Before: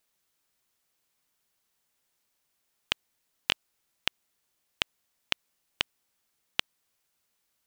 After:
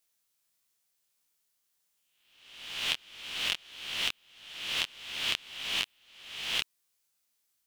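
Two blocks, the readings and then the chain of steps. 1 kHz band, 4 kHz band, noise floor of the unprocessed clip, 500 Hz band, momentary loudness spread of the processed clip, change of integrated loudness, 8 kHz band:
-1.0 dB, +3.0 dB, -78 dBFS, -1.5 dB, 13 LU, +1.0 dB, +5.5 dB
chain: reverse spectral sustain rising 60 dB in 0.94 s; treble shelf 2.9 kHz +9 dB; detune thickener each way 55 cents; trim -6 dB

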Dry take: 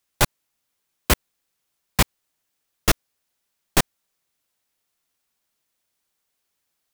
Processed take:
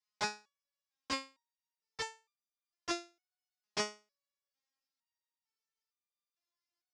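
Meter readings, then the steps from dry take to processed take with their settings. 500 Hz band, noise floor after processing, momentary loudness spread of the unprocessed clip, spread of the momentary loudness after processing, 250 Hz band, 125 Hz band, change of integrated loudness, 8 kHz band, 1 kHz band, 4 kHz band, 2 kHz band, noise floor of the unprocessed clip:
-14.0 dB, under -85 dBFS, 5 LU, 17 LU, -16.5 dB, -31.0 dB, -16.0 dB, -18.0 dB, -13.0 dB, -13.5 dB, -14.0 dB, -77 dBFS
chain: cabinet simulation 130–6700 Hz, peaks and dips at 210 Hz -6 dB, 980 Hz +4 dB, 1.8 kHz +3 dB, 5.1 kHz +8 dB; resonator arpeggio 2.2 Hz 210–1200 Hz; trim -1.5 dB

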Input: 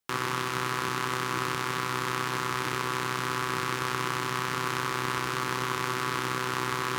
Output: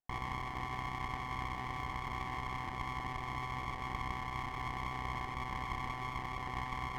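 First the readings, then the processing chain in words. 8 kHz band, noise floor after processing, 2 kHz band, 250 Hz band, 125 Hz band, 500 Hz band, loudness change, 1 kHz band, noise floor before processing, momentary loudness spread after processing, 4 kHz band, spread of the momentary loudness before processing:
-22.0 dB, -42 dBFS, -12.0 dB, -10.5 dB, -6.0 dB, -16.0 dB, -10.5 dB, -8.5 dB, -32 dBFS, 1 LU, -15.0 dB, 0 LU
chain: cascade formant filter a; sliding maximum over 17 samples; trim +7 dB

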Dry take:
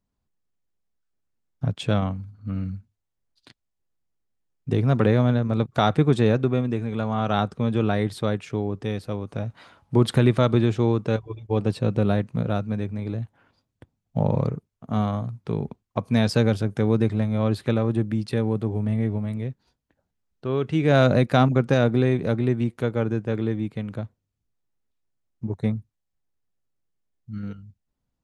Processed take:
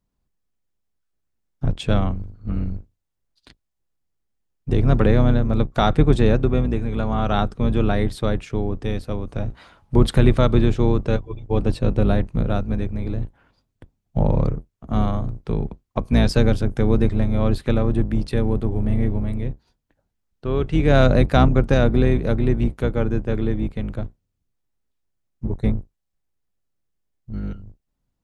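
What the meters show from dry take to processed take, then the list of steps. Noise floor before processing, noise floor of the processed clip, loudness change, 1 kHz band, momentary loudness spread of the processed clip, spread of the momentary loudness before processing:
-80 dBFS, -76 dBFS, +2.5 dB, +1.5 dB, 14 LU, 14 LU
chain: octave divider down 2 oct, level +1 dB; trim +1.5 dB

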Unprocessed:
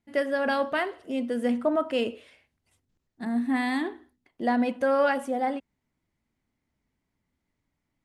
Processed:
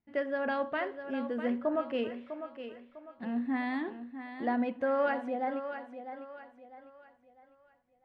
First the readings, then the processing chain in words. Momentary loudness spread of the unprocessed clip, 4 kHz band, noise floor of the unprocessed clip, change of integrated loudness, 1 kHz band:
8 LU, -10.5 dB, -81 dBFS, -6.5 dB, -5.5 dB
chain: low-pass 2.7 kHz 12 dB/octave; on a send: thinning echo 651 ms, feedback 38%, high-pass 200 Hz, level -9.5 dB; on the sum: trim -6 dB

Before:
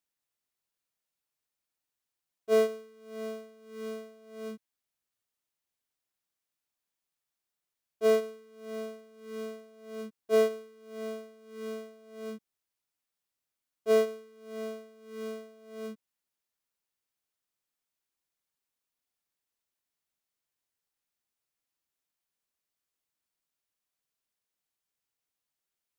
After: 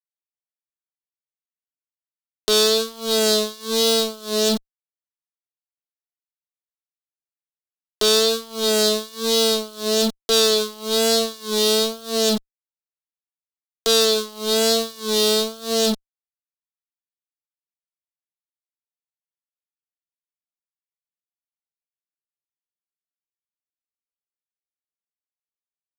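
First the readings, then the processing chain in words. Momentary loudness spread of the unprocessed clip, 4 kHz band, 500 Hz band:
21 LU, +31.0 dB, +10.5 dB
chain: fuzz box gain 46 dB, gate -54 dBFS; vibrato 1.1 Hz 49 cents; resonant high shelf 2.9 kHz +10 dB, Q 3; tape noise reduction on one side only encoder only; trim -4.5 dB

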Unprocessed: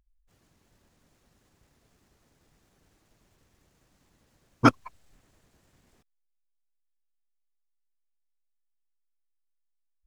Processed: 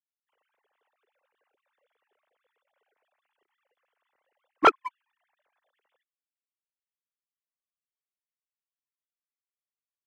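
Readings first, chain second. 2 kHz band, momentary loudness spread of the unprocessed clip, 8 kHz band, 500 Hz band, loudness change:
+2.0 dB, 0 LU, no reading, +3.5 dB, +1.0 dB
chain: formants replaced by sine waves; dynamic bell 1.2 kHz, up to -5 dB, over -29 dBFS, Q 3.8; waveshaping leveller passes 1

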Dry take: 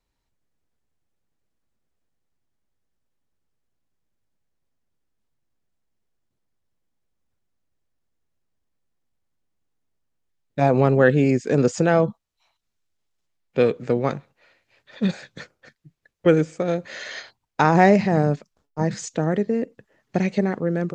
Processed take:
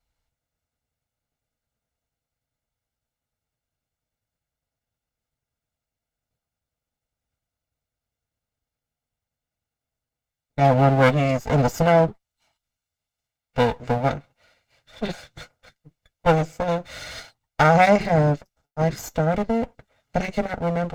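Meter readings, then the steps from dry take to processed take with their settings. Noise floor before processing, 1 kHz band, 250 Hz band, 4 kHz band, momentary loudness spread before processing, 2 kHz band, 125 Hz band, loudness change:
-77 dBFS, +3.0 dB, -3.0 dB, +3.5 dB, 17 LU, +0.5 dB, +1.0 dB, 0.0 dB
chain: comb filter that takes the minimum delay 1.4 ms; comb of notches 190 Hz; trim +1.5 dB

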